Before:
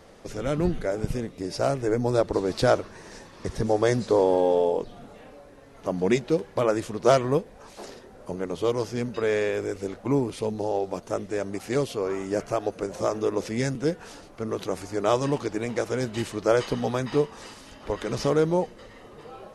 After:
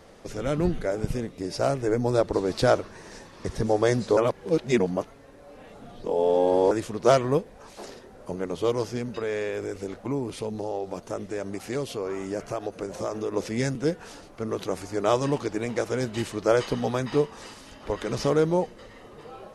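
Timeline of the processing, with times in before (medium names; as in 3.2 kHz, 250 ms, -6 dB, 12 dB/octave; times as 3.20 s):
4.17–6.71 s: reverse
8.97–13.34 s: compression 2:1, threshold -28 dBFS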